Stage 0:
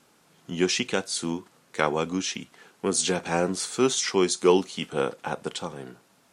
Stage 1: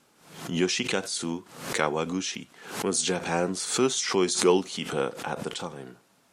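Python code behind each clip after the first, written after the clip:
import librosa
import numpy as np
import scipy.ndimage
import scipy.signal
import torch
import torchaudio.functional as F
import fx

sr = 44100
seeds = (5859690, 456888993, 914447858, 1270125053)

y = fx.pre_swell(x, sr, db_per_s=90.0)
y = y * 10.0 ** (-2.0 / 20.0)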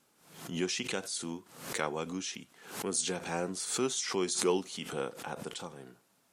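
y = fx.high_shelf(x, sr, hz=10000.0, db=9.5)
y = y * 10.0 ** (-8.0 / 20.0)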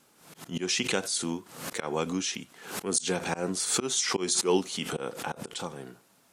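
y = fx.auto_swell(x, sr, attack_ms=133.0)
y = y * 10.0 ** (7.0 / 20.0)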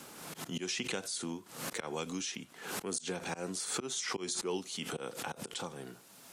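y = fx.band_squash(x, sr, depth_pct=70)
y = y * 10.0 ** (-8.0 / 20.0)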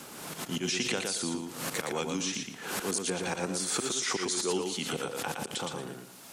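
y = fx.echo_feedback(x, sr, ms=116, feedback_pct=24, wet_db=-4.5)
y = y * 10.0 ** (4.5 / 20.0)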